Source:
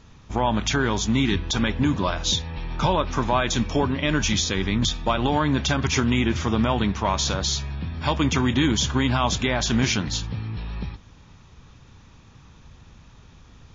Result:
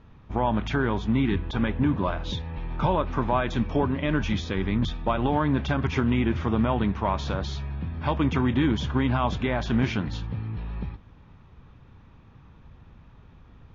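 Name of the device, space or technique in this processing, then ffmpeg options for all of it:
phone in a pocket: -filter_complex "[0:a]lowpass=3.2k,highshelf=f=2.5k:g=-9,asettb=1/sr,asplit=3[a][b][c];[a]atrim=end=0.854[d];[b]atrim=start=0.85:end=2.3,asetpts=PTS-STARTPTS,afade=t=in:d=0.004:c=qsin,afade=t=out:st=1.446:d=0.004:c=qsin,equalizer=f=6.2k:t=o:w=0.86:g=-5.5[e];[c]atrim=start=2.296[f];[d][e]acrossfade=d=0.004:c1=hsin:c2=qsin[g];[g][f]acrossfade=d=0.004:c1=qsin:c2=hsin,volume=-1.5dB"

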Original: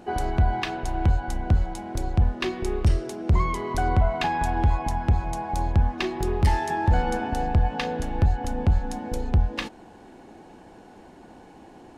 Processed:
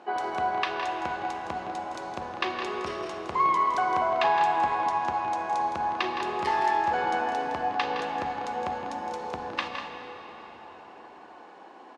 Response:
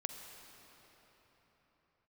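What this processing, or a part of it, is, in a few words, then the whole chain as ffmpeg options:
station announcement: -filter_complex "[0:a]highpass=480,lowpass=4.6k,equalizer=f=1.1k:t=o:w=0.42:g=7,aecho=1:1:163.3|195.3:0.355|0.316[a];[1:a]atrim=start_sample=2205[b];[a][b]afir=irnorm=-1:irlink=0,volume=1.5dB"

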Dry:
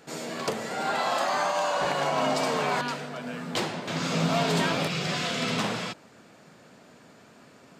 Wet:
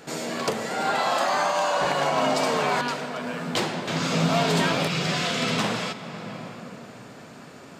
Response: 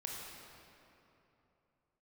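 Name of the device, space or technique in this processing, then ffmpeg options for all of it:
ducked reverb: -filter_complex "[0:a]asplit=3[a][b][c];[1:a]atrim=start_sample=2205[d];[b][d]afir=irnorm=-1:irlink=0[e];[c]apad=whole_len=343585[f];[e][f]sidechaincompress=threshold=-38dB:ratio=8:attack=7:release=615,volume=2.5dB[g];[a][g]amix=inputs=2:normalize=0,volume=2dB"

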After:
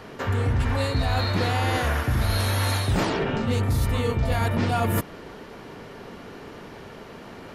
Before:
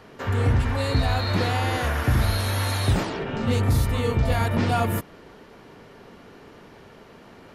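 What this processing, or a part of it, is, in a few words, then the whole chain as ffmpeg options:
compression on the reversed sound: -af "areverse,acompressor=threshold=-26dB:ratio=6,areverse,volume=6dB"

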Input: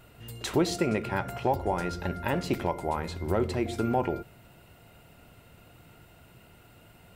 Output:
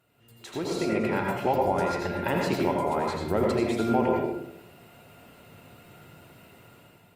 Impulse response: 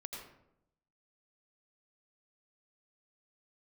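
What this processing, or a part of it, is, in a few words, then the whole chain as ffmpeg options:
far-field microphone of a smart speaker: -filter_complex "[1:a]atrim=start_sample=2205[a];[0:a][a]afir=irnorm=-1:irlink=0,highpass=120,dynaudnorm=f=340:g=5:m=15dB,volume=-8dB" -ar 48000 -c:a libopus -b:a 48k

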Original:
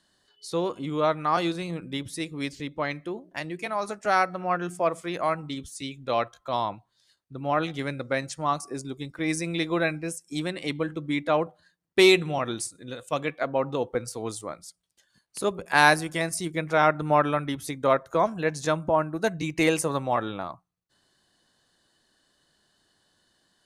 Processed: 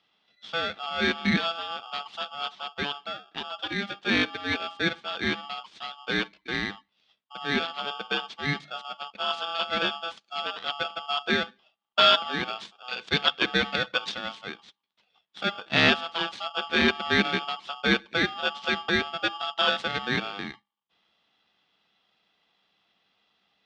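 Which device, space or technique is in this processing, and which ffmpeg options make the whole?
ring modulator pedal into a guitar cabinet: -filter_complex "[0:a]asettb=1/sr,asplit=3[a][b][c];[a]atrim=end=12.884[d];[b]atrim=start=12.88:end=14.21,asetpts=PTS-STARTPTS,afade=t=in:d=0.004:c=qsin,afade=t=out:st=1.326:d=0.004:c=qsin,equalizer=f=4.6k:w=0.32:g=14[e];[c]atrim=start=14.206[f];[d][e]acrossfade=d=0.004:c1=hsin:c2=qsin[g];[g][f]acrossfade=d=0.004:c1=qsin:c2=hsin,aeval=exprs='val(0)*sgn(sin(2*PI*1000*n/s))':c=same,highpass=100,equalizer=f=110:t=q:w=4:g=-4,equalizer=f=200:t=q:w=4:g=10,equalizer=f=580:t=q:w=4:g=-4,equalizer=f=3.4k:t=q:w=4:g=8,lowpass=f=4.2k:w=0.5412,lowpass=f=4.2k:w=1.3066,volume=-2.5dB"

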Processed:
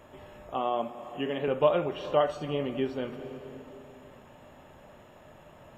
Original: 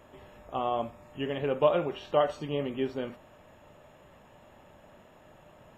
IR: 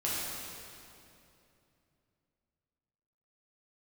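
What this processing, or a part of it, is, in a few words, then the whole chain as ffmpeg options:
ducked reverb: -filter_complex "[0:a]asettb=1/sr,asplit=3[a][b][c];[a]atrim=end=0.544[d];[b]atrim=start=0.54:end=1.48,asetpts=PTS-STARTPTS,afade=t=in:d=0.004:c=qsin,afade=t=out:st=0.936:d=0.004:c=qsin,highpass=f=150:w=0.5412,highpass=f=150:w=1.3066[e];[c]atrim=start=1.476[f];[d][e]acrossfade=d=0.004:c1=hsin:c2=qsin[g];[g][f]acrossfade=d=0.004:c1=qsin:c2=hsin,asplit=3[h][i][j];[1:a]atrim=start_sample=2205[k];[i][k]afir=irnorm=-1:irlink=0[l];[j]apad=whole_len=254538[m];[l][m]sidechaincompress=threshold=-37dB:ratio=8:attack=39:release=343,volume=-11.5dB[n];[h][n]amix=inputs=2:normalize=0"

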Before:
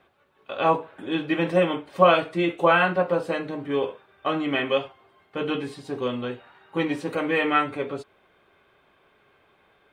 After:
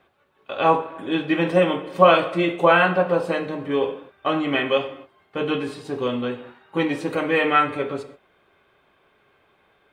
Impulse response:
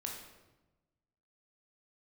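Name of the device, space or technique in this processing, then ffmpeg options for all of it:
keyed gated reverb: -filter_complex "[0:a]asplit=3[a][b][c];[1:a]atrim=start_sample=2205[d];[b][d]afir=irnorm=-1:irlink=0[e];[c]apad=whole_len=437791[f];[e][f]sidechaingate=range=-33dB:threshold=-50dB:ratio=16:detection=peak,volume=-5dB[g];[a][g]amix=inputs=2:normalize=0"

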